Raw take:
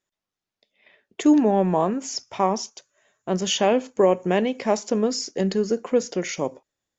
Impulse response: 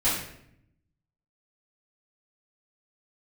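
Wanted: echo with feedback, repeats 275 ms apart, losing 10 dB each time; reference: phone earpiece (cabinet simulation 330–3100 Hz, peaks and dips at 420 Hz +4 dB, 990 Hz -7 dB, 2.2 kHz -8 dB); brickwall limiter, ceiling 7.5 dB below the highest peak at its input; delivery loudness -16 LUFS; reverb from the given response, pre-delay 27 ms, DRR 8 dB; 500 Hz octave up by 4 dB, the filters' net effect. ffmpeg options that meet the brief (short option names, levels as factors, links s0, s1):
-filter_complex "[0:a]equalizer=f=500:t=o:g=4,alimiter=limit=0.224:level=0:latency=1,aecho=1:1:275|550|825|1100:0.316|0.101|0.0324|0.0104,asplit=2[s0][s1];[1:a]atrim=start_sample=2205,adelay=27[s2];[s1][s2]afir=irnorm=-1:irlink=0,volume=0.0944[s3];[s0][s3]amix=inputs=2:normalize=0,highpass=330,equalizer=f=420:t=q:w=4:g=4,equalizer=f=990:t=q:w=4:g=-7,equalizer=f=2200:t=q:w=4:g=-8,lowpass=f=3100:w=0.5412,lowpass=f=3100:w=1.3066,volume=2.66"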